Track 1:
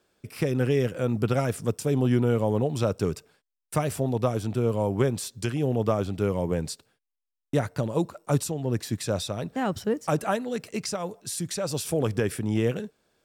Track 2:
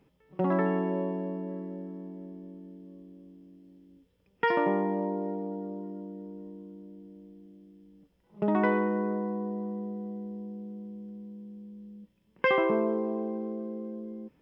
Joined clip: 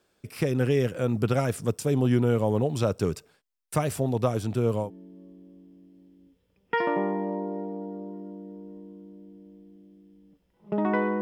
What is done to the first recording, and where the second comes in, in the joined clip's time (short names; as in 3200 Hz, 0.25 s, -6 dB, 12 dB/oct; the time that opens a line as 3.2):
track 1
4.84 switch to track 2 from 2.54 s, crossfade 0.14 s